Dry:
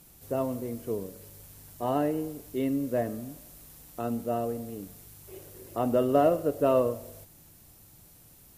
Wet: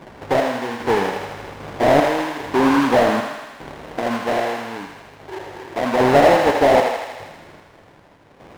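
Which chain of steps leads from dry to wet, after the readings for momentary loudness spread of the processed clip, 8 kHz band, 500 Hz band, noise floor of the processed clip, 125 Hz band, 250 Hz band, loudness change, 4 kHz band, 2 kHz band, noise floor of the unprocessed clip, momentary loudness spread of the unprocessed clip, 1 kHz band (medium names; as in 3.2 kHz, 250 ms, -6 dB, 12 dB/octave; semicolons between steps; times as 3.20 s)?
20 LU, +9.5 dB, +10.5 dB, -49 dBFS, +7.0 dB, +9.0 dB, +11.0 dB, +21.0 dB, +24.5 dB, -55 dBFS, 22 LU, +15.0 dB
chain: spectral gate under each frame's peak -15 dB strong; in parallel at -1 dB: compression, threshold -40 dBFS, peak gain reduction 20 dB; on the sum: loudest bins only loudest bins 64; sample-rate reducer 1.3 kHz, jitter 20%; random-step tremolo 2.5 Hz, depth 90%; overdrive pedal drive 21 dB, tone 1.2 kHz, clips at -12.5 dBFS; thinning echo 80 ms, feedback 73%, high-pass 570 Hz, level -5 dB; modulated delay 118 ms, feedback 61%, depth 158 cents, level -21.5 dB; trim +9 dB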